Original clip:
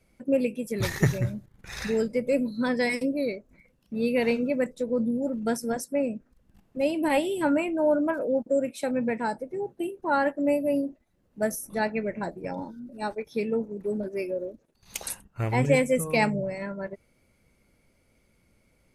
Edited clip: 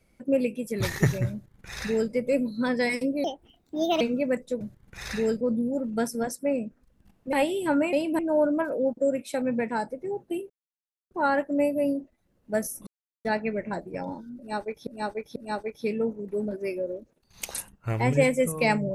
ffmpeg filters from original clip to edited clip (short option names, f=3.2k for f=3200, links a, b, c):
-filter_complex "[0:a]asplit=12[a][b][c][d][e][f][g][h][i][j][k][l];[a]atrim=end=3.244[m];[b]atrim=start=3.24:end=4.3,asetpts=PTS-STARTPTS,asetrate=60858,aresample=44100[n];[c]atrim=start=4.296:end=4.902[o];[d]atrim=start=1.318:end=2.122[p];[e]atrim=start=4.898:end=6.822[q];[f]atrim=start=7.078:end=7.682[r];[g]atrim=start=6.818:end=7.082[s];[h]atrim=start=7.678:end=9.99,asetpts=PTS-STARTPTS,afade=t=out:st=2.308:d=0.004:c=hsin,apad=pad_dur=0.61[t];[i]atrim=start=9.99:end=11.75,asetpts=PTS-STARTPTS,afade=t=in:d=0.004:c=hsin,afade=t=out:st=1.756:d=0.004:c=hsin,apad=pad_dur=0.38[u];[j]atrim=start=11.75:end=13.372,asetpts=PTS-STARTPTS,afade=t=in:d=0.004:c=hsin[v];[k]atrim=start=12.878:end=13.372[w];[l]atrim=start=12.878[x];[m][n]acrossfade=d=0.004:c1=hsin:c2=hsin[y];[y][o]acrossfade=d=0.004:c1=hsin:c2=hsin[z];[z][p]acrossfade=d=0.004:c1=hsin:c2=hsin[aa];[aa][q]acrossfade=d=0.004:c1=hsin:c2=hsin[ab];[ab][r]acrossfade=d=0.004:c1=hsin:c2=hsin[ac];[ac][s]acrossfade=d=0.004:c1=hsin:c2=hsin[ad];[t][u][v]concat=n=3:v=0:a=1[ae];[ad][ae]acrossfade=d=0.004:c1=hsin:c2=hsin[af];[af][w]acrossfade=d=0.004:c1=hsin:c2=hsin[ag];[ag][x]acrossfade=d=0.004:c1=hsin:c2=hsin"